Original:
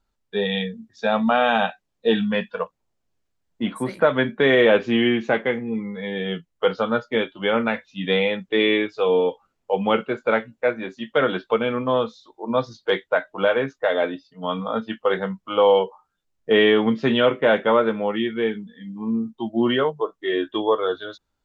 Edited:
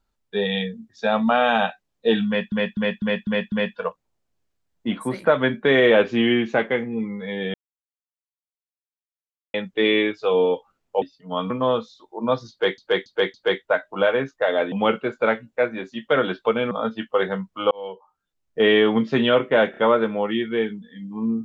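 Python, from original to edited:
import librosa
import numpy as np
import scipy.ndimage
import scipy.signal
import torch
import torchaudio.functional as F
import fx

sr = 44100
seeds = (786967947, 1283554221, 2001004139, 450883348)

y = fx.edit(x, sr, fx.repeat(start_s=2.27, length_s=0.25, count=6),
    fx.silence(start_s=6.29, length_s=2.0),
    fx.swap(start_s=9.77, length_s=1.99, other_s=14.14, other_length_s=0.48),
    fx.repeat(start_s=12.76, length_s=0.28, count=4),
    fx.fade_in_span(start_s=15.62, length_s=1.26, curve='qsin'),
    fx.stutter(start_s=17.62, slice_s=0.03, count=3), tone=tone)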